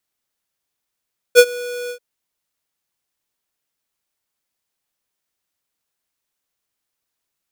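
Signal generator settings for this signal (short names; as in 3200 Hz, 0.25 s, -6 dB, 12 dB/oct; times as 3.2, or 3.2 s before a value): ADSR square 488 Hz, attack 39 ms, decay 58 ms, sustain -22.5 dB, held 0.55 s, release 86 ms -4.5 dBFS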